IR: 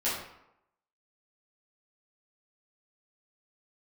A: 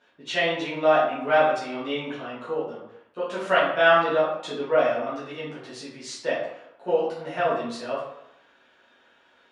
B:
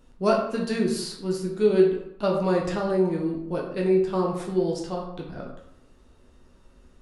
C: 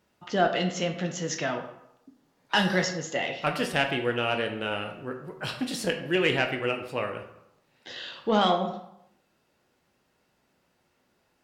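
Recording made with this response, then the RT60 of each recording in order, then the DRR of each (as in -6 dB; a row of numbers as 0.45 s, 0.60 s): A; 0.80 s, 0.80 s, 0.80 s; -10.5 dB, -2.0 dB, 3.5 dB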